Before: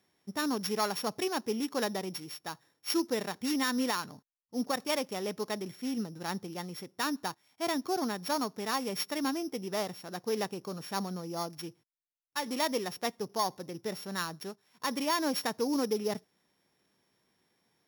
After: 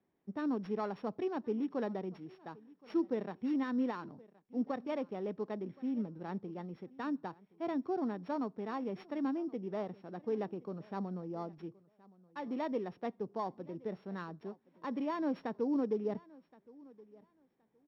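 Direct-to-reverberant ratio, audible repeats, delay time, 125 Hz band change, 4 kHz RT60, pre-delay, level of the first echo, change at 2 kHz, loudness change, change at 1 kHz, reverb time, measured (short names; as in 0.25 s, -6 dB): none, 1, 1.071 s, -2.5 dB, none, none, -23.0 dB, -12.0 dB, -4.5 dB, -7.5 dB, none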